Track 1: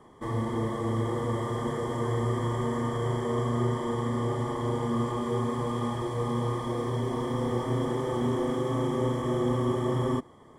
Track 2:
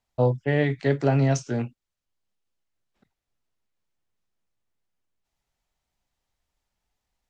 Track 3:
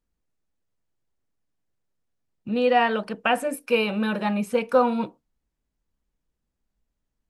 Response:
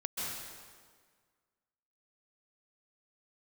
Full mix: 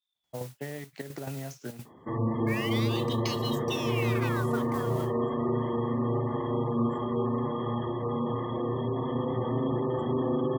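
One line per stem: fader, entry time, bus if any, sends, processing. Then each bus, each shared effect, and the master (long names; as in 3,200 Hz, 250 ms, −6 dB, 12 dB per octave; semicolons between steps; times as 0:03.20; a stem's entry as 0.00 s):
−2.0 dB, 1.85 s, no bus, no send, mains-hum notches 60/120/180/240/300/360/420/480/540 Hz; gate on every frequency bin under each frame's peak −25 dB strong; low-shelf EQ 410 Hz +7 dB
−1.0 dB, 0.15 s, bus A, no send, gate pattern ".x.xxxxx.x" 174 BPM −12 dB
−6.0 dB, 0.00 s, bus A, no send, ring modulator whose carrier an LFO sweeps 2,000 Hz, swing 80%, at 0.3 Hz
bus A: 0.0 dB, noise that follows the level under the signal 13 dB; downward compressor 16 to 1, threshold −33 dBFS, peak gain reduction 17 dB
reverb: not used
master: high-pass filter 110 Hz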